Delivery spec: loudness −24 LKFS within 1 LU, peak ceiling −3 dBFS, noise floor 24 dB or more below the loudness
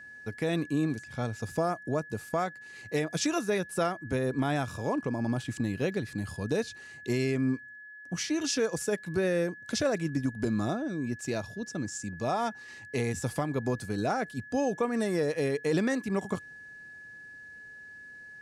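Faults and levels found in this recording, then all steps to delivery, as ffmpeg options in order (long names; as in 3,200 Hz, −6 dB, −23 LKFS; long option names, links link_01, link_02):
interfering tone 1,700 Hz; level of the tone −45 dBFS; integrated loudness −31.0 LKFS; sample peak −17.5 dBFS; target loudness −24.0 LKFS
→ -af "bandreject=frequency=1700:width=30"
-af "volume=7dB"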